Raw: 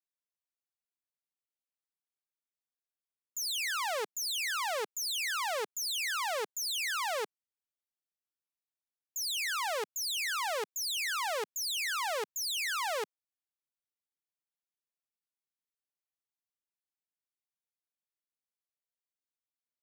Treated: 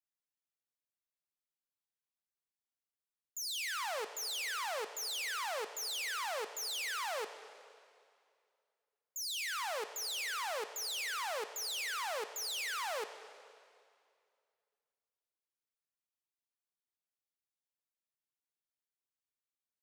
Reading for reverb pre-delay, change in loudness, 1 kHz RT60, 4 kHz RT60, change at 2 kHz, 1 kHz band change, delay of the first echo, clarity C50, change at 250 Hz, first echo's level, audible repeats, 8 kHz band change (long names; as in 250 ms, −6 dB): 6 ms, −4.5 dB, 2.3 s, 2.1 s, −4.5 dB, −4.5 dB, no echo audible, 10.5 dB, −4.5 dB, no echo audible, no echo audible, −4.5 dB